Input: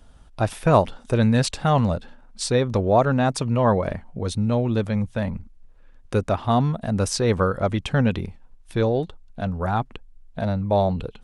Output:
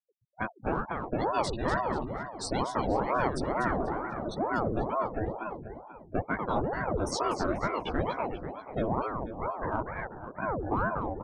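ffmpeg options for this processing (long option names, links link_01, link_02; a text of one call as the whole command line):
ffmpeg -i in.wav -filter_complex "[0:a]agate=range=-33dB:threshold=-42dB:ratio=3:detection=peak,afftfilt=real='re*gte(hypot(re,im),0.0631)':imag='im*gte(hypot(re,im),0.0631)':win_size=1024:overlap=0.75,asplit=2[link_01][link_02];[link_02]adelay=15,volume=-2.5dB[link_03];[link_01][link_03]amix=inputs=2:normalize=0,acrossover=split=130[link_04][link_05];[link_04]acompressor=threshold=-31dB:ratio=4[link_06];[link_06][link_05]amix=inputs=2:normalize=0,asplit=2[link_07][link_08];[link_08]asoftclip=type=tanh:threshold=-15dB,volume=-10dB[link_09];[link_07][link_09]amix=inputs=2:normalize=0,alimiter=limit=-8.5dB:level=0:latency=1:release=246,asplit=2[link_10][link_11];[link_11]adelay=244,lowpass=frequency=4000:poles=1,volume=-5dB,asplit=2[link_12][link_13];[link_13]adelay=244,lowpass=frequency=4000:poles=1,volume=0.51,asplit=2[link_14][link_15];[link_15]adelay=244,lowpass=frequency=4000:poles=1,volume=0.51,asplit=2[link_16][link_17];[link_17]adelay=244,lowpass=frequency=4000:poles=1,volume=0.51,asplit=2[link_18][link_19];[link_19]adelay=244,lowpass=frequency=4000:poles=1,volume=0.51,asplit=2[link_20][link_21];[link_21]adelay=244,lowpass=frequency=4000:poles=1,volume=0.51[link_22];[link_10][link_12][link_14][link_16][link_18][link_20][link_22]amix=inputs=7:normalize=0,aeval=exprs='val(0)*sin(2*PI*490*n/s+490*0.8/2.2*sin(2*PI*2.2*n/s))':channel_layout=same,volume=-8.5dB" out.wav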